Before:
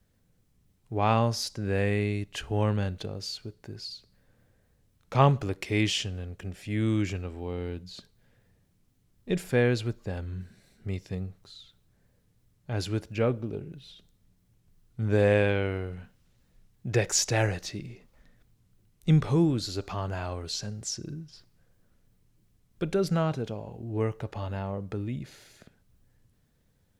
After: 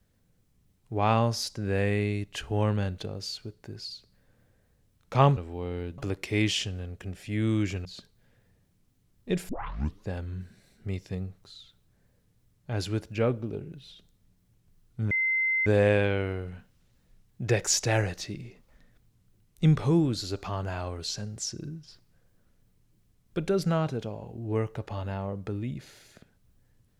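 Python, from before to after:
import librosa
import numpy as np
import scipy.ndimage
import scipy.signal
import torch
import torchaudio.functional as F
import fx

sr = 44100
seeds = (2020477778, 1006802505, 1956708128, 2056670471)

y = fx.edit(x, sr, fx.move(start_s=7.24, length_s=0.61, to_s=5.37),
    fx.tape_start(start_s=9.49, length_s=0.57),
    fx.insert_tone(at_s=15.11, length_s=0.55, hz=2070.0, db=-23.0), tone=tone)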